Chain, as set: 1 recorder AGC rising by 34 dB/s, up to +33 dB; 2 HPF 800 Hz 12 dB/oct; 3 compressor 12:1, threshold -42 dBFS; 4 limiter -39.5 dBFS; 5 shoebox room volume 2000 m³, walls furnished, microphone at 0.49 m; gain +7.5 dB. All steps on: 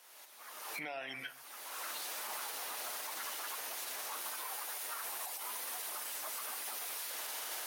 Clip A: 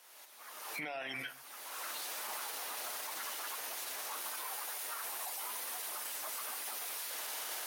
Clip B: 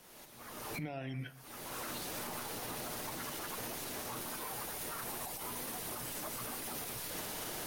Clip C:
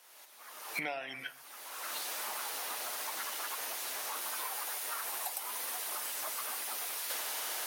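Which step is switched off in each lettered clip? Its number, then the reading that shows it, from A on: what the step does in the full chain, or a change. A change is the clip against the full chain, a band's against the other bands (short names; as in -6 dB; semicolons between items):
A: 3, mean gain reduction 4.0 dB; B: 2, 250 Hz band +14.5 dB; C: 4, mean gain reduction 2.5 dB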